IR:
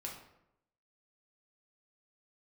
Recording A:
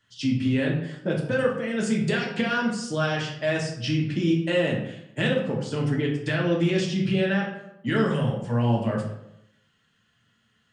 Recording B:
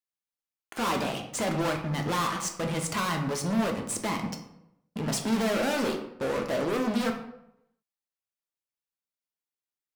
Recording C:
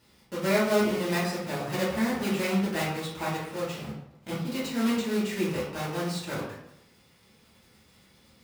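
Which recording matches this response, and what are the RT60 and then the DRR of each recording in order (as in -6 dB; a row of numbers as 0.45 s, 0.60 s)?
A; 0.80 s, 0.80 s, 0.80 s; -2.5 dB, 2.5 dB, -9.5 dB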